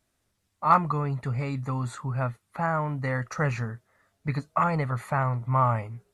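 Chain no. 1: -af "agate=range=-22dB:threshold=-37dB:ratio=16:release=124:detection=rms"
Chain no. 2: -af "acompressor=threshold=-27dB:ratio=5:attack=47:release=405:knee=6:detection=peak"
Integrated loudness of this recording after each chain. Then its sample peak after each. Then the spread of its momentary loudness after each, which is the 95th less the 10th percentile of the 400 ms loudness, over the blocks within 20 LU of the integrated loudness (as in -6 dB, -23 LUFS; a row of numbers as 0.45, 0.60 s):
-27.5, -31.5 LUFS; -8.0, -12.5 dBFS; 10, 5 LU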